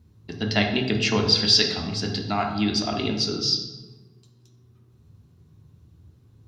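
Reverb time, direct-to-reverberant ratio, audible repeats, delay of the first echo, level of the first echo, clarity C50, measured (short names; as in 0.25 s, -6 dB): 1.1 s, 2.0 dB, none, none, none, 6.0 dB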